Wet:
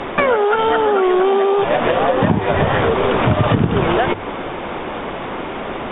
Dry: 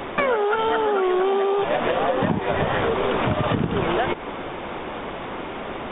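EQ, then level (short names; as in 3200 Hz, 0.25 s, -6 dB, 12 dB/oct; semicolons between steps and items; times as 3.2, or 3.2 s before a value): dynamic EQ 100 Hz, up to +6 dB, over -41 dBFS, Q 1.8; air absorption 59 m; notches 50/100 Hz; +6.0 dB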